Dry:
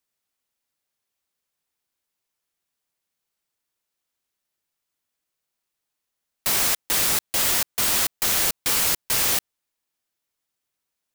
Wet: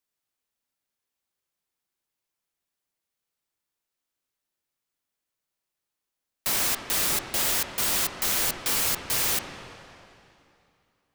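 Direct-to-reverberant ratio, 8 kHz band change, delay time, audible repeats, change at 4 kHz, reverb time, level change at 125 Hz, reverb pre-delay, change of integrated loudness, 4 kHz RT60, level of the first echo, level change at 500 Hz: 8.5 dB, -4.0 dB, none, none, -3.5 dB, 2.7 s, -2.0 dB, 7 ms, -4.0 dB, 2.5 s, none, -2.0 dB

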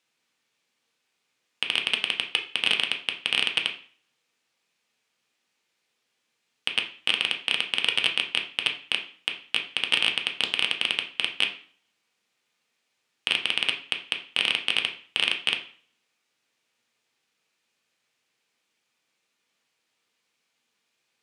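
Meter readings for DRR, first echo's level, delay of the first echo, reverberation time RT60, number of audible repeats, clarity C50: 2.0 dB, none, none, 0.45 s, none, 10.5 dB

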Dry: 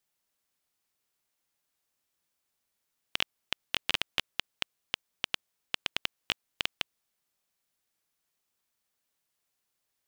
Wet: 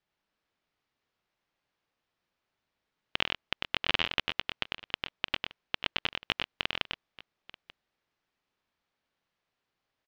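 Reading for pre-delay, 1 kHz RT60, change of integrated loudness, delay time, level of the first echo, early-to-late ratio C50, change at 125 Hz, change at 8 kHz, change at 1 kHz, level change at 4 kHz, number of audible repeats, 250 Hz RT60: none, none, +1.5 dB, 98 ms, -4.0 dB, none, +5.5 dB, -11.0 dB, +4.5 dB, +1.0 dB, 2, none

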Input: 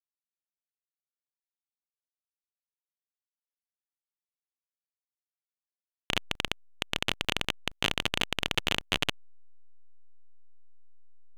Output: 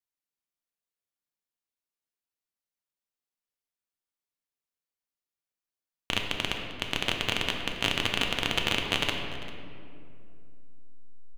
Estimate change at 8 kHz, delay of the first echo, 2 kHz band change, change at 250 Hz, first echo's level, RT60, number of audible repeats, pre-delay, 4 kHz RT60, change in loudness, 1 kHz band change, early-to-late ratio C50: +1.0 dB, 0.396 s, +2.0 dB, +3.0 dB, -17.5 dB, 2.6 s, 1, 3 ms, 1.4 s, +1.5 dB, +2.0 dB, 4.0 dB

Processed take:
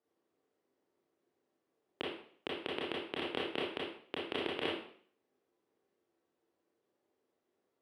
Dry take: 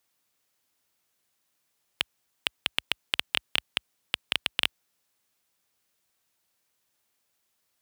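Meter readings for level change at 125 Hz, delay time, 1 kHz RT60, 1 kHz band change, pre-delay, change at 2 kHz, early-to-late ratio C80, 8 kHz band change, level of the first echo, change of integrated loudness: -2.0 dB, none, 0.55 s, -1.5 dB, 24 ms, -10.0 dB, 6.5 dB, under -20 dB, none, -9.0 dB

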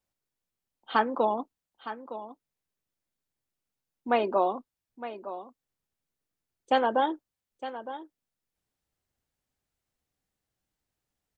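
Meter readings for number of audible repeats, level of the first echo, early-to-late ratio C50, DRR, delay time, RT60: 1, -13.0 dB, none, none, 0.912 s, none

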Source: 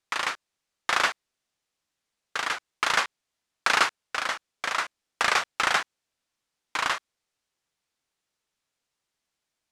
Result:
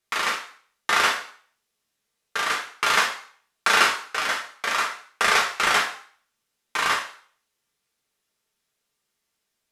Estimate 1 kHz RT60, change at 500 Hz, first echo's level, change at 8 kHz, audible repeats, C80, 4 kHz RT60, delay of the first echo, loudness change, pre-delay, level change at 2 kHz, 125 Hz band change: 0.50 s, +4.5 dB, none, +5.0 dB, none, 11.0 dB, 0.50 s, none, +4.0 dB, 3 ms, +4.0 dB, +4.0 dB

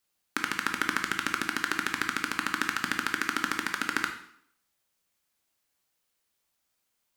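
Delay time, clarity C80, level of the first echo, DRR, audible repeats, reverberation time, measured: none, 11.0 dB, none, 4.0 dB, none, 0.65 s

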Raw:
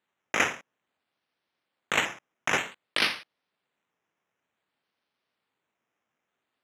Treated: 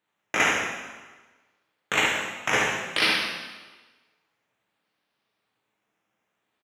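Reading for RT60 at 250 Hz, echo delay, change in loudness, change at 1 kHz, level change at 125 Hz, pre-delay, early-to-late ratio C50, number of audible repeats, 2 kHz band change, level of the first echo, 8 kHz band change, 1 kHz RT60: 1.2 s, 72 ms, +4.0 dB, +4.5 dB, +5.5 dB, 4 ms, 0.5 dB, 1, +5.0 dB, -6.0 dB, +4.5 dB, 1.4 s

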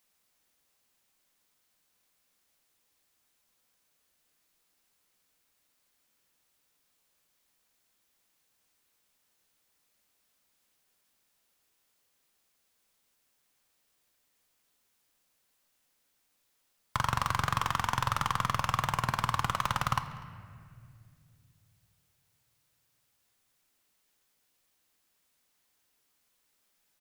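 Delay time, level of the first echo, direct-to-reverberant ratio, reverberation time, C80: 0.246 s, -23.5 dB, 9.0 dB, 2.3 s, 11.5 dB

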